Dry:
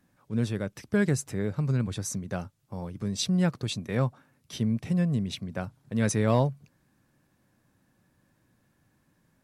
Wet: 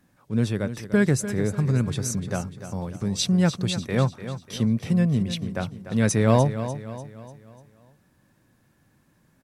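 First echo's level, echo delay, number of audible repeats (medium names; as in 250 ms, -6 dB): -11.5 dB, 296 ms, 4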